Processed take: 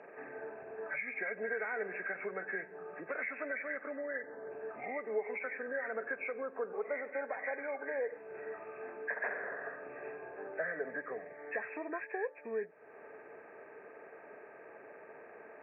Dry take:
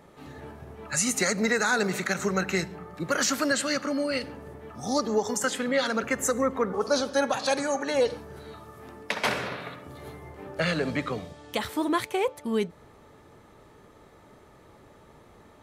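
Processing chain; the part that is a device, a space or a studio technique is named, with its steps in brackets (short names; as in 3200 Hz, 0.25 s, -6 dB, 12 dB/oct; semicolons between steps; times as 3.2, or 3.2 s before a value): 3.96–4.52 LPF 6000 Hz 24 dB/oct; hearing aid with frequency lowering (nonlinear frequency compression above 1500 Hz 4:1; compressor 2.5:1, threshold -44 dBFS, peak gain reduction 18.5 dB; speaker cabinet 320–6500 Hz, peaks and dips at 440 Hz +10 dB, 670 Hz +10 dB, 1700 Hz +8 dB); gain -3.5 dB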